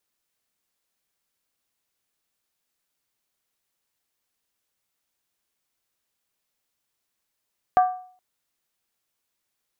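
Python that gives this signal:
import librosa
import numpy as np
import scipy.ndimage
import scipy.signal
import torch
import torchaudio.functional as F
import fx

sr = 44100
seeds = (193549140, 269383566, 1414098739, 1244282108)

y = fx.strike_skin(sr, length_s=0.42, level_db=-11, hz=736.0, decay_s=0.5, tilt_db=10.0, modes=5)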